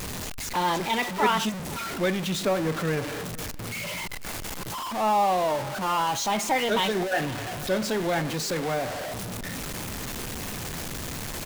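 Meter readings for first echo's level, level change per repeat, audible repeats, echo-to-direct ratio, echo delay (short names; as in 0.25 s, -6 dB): -20.0 dB, no steady repeat, 1, -20.0 dB, 0.498 s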